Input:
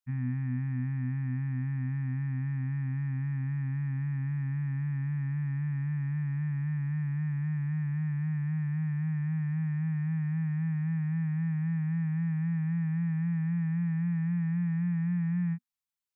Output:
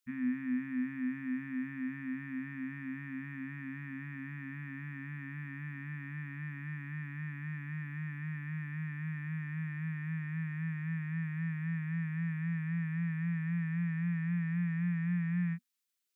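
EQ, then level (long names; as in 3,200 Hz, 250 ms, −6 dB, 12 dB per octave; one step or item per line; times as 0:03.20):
low-shelf EQ 110 Hz −11 dB
parametric band 730 Hz −3.5 dB 0.46 octaves
phaser with its sweep stopped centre 310 Hz, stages 4
+7.0 dB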